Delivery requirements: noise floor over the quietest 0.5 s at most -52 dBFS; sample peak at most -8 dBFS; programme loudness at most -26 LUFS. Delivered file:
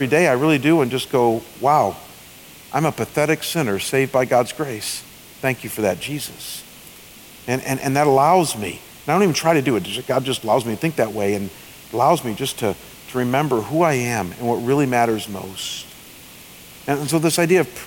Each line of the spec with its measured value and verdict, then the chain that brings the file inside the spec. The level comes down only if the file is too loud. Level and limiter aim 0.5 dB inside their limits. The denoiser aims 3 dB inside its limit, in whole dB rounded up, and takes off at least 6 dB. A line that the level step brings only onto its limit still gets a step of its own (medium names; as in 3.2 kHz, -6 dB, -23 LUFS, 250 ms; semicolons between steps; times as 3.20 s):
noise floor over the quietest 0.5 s -42 dBFS: fail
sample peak -4.0 dBFS: fail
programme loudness -19.5 LUFS: fail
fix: noise reduction 6 dB, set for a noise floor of -42 dBFS; trim -7 dB